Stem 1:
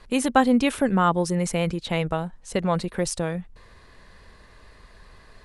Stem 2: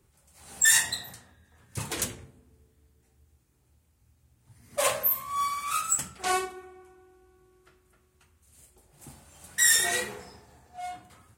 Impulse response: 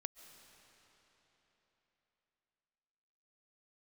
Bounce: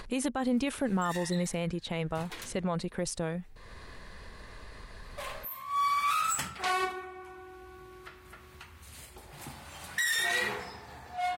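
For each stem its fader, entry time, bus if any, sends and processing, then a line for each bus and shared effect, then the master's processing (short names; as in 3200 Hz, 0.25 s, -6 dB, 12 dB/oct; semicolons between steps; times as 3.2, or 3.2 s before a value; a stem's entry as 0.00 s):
-6.0 dB, 0.00 s, no send, upward compressor, threshold -30 dBFS
+1.5 dB, 0.40 s, no send, ten-band EQ 1000 Hz +6 dB, 2000 Hz +6 dB, 4000 Hz +6 dB, 8000 Hz -6 dB; limiter -17 dBFS, peak gain reduction 11.5 dB; upward compressor, threshold -41 dBFS; auto duck -15 dB, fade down 0.80 s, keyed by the first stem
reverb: off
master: limiter -21 dBFS, peak gain reduction 11 dB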